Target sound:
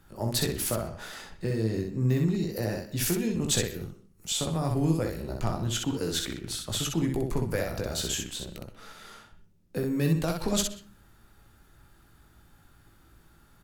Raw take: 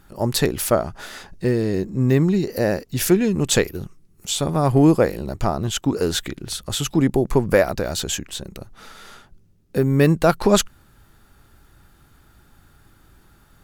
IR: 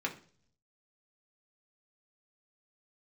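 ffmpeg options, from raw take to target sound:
-filter_complex "[0:a]acrossover=split=170|3000[link_01][link_02][link_03];[link_02]acompressor=threshold=-25dB:ratio=3[link_04];[link_01][link_04][link_03]amix=inputs=3:normalize=0,asoftclip=type=hard:threshold=-10.5dB,aecho=1:1:18|63:0.473|0.631,asplit=2[link_05][link_06];[1:a]atrim=start_sample=2205,asetrate=52920,aresample=44100,adelay=124[link_07];[link_06][link_07]afir=irnorm=-1:irlink=0,volume=-17.5dB[link_08];[link_05][link_08]amix=inputs=2:normalize=0,volume=-7dB"

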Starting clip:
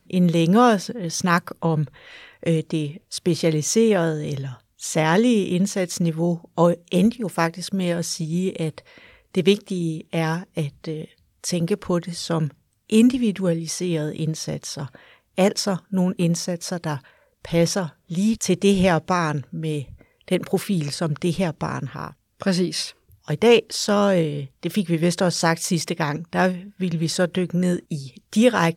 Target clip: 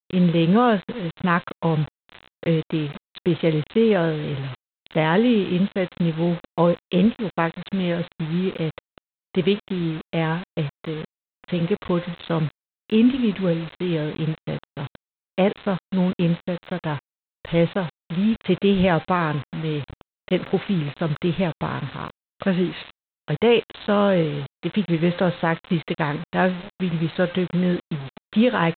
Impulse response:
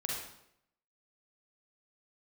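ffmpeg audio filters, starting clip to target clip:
-af "bandreject=frequency=262.9:width_type=h:width=4,bandreject=frequency=525.8:width_type=h:width=4,bandreject=frequency=788.7:width_type=h:width=4,bandreject=frequency=1051.6:width_type=h:width=4,bandreject=frequency=1314.5:width_type=h:width=4,bandreject=frequency=1577.4:width_type=h:width=4,bandreject=frequency=1840.3:width_type=h:width=4,bandreject=frequency=2103.2:width_type=h:width=4,bandreject=frequency=2366.1:width_type=h:width=4,bandreject=frequency=2629:width_type=h:width=4,bandreject=frequency=2891.9:width_type=h:width=4,aresample=8000,acrusher=bits=5:mix=0:aa=0.000001,aresample=44100,alimiter=level_in=7.5dB:limit=-1dB:release=50:level=0:latency=1,volume=-7.5dB"

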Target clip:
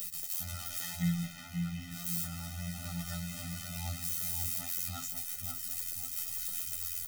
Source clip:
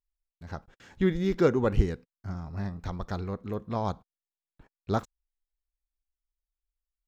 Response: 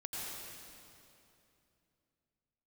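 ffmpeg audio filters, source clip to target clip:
-filter_complex "[0:a]aeval=exprs='val(0)+0.5*0.0422*sgn(val(0))':channel_layout=same,highpass=68,acrossover=split=250|1600[link_01][link_02][link_03];[link_02]acompressor=threshold=-40dB:ratio=6[link_04];[link_03]alimiter=level_in=8.5dB:limit=-24dB:level=0:latency=1,volume=-8.5dB[link_05];[link_01][link_04][link_05]amix=inputs=3:normalize=0,asettb=1/sr,asplit=3[link_06][link_07][link_08];[link_06]atrim=end=1.244[link_09];[link_07]atrim=start=1.24:end=1.92,asetpts=PTS-STARTPTS,afade=type=in:duration=0.004:curve=qsin,afade=type=out:start_time=0.676:duration=0.004:curve=qsin,acrossover=split=240|3800[link_10][link_11][link_12];[link_10]acompressor=threshold=-39dB:ratio=4[link_13];[link_11]acompressor=threshold=-33dB:ratio=4[link_14];[link_12]acompressor=threshold=-58dB:ratio=4[link_15];[link_13][link_14][link_15]amix=inputs=3:normalize=0[link_16];[link_08]atrim=start=1.916[link_17];[link_09][link_16]acrossfade=duration=0.004:curve1=hsin:curve2=qsin[link_18];[link_18][link_17]acrossfade=duration=0.004:curve1=qsin:curve2=hsin,afftfilt=real='hypot(re,im)*cos(PI*b)':imag='0':win_size=2048:overlap=0.75,flanger=delay=17:depth=4.3:speed=0.93,crystalizer=i=7.5:c=0,flanger=delay=4.6:depth=9.5:regen=43:speed=0.35:shape=triangular,asplit=2[link_19][link_20];[link_20]adelay=536,lowpass=frequency=1600:poles=1,volume=-4dB,asplit=2[link_21][link_22];[link_22]adelay=536,lowpass=frequency=1600:poles=1,volume=0.44,asplit=2[link_23][link_24];[link_24]adelay=536,lowpass=frequency=1600:poles=1,volume=0.44,asplit=2[link_25][link_26];[link_26]adelay=536,lowpass=frequency=1600:poles=1,volume=0.44,asplit=2[link_27][link_28];[link_28]adelay=536,lowpass=frequency=1600:poles=1,volume=0.44,asplit=2[link_29][link_30];[link_30]adelay=536,lowpass=frequency=1600:poles=1,volume=0.44[link_31];[link_19][link_21][link_23][link_25][link_27][link_29][link_31]amix=inputs=7:normalize=0,afftfilt=real='re*eq(mod(floor(b*sr/1024/300),2),0)':imag='im*eq(mod(floor(b*sr/1024/300),2),0)':win_size=1024:overlap=0.75"

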